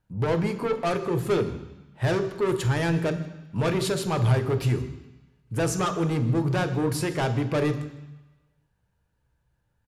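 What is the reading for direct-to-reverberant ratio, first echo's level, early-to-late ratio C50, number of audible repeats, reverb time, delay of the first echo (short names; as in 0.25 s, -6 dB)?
7.5 dB, -21.0 dB, 10.5 dB, 1, 1.0 s, 0.158 s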